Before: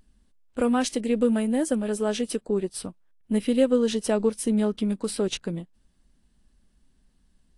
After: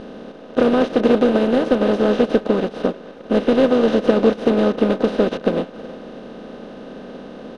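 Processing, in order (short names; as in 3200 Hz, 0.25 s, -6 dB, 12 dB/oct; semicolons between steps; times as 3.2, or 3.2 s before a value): per-bin compression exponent 0.2; sample leveller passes 1; air absorption 270 m; speakerphone echo 0.32 s, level -9 dB; upward expander 2.5:1, over -21 dBFS; gain +1.5 dB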